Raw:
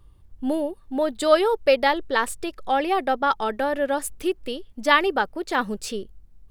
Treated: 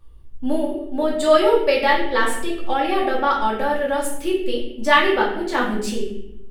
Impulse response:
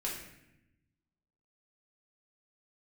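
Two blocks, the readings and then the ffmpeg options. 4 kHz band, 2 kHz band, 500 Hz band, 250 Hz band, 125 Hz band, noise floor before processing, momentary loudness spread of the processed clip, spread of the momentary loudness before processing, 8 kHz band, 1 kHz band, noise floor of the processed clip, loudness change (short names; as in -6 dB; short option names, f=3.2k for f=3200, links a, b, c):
+3.0 dB, +3.5 dB, +3.5 dB, +4.0 dB, n/a, -53 dBFS, 11 LU, 12 LU, +2.0 dB, +3.0 dB, -36 dBFS, +3.0 dB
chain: -filter_complex "[1:a]atrim=start_sample=2205,asetrate=52920,aresample=44100[a];[0:a][a]afir=irnorm=-1:irlink=0,volume=2dB"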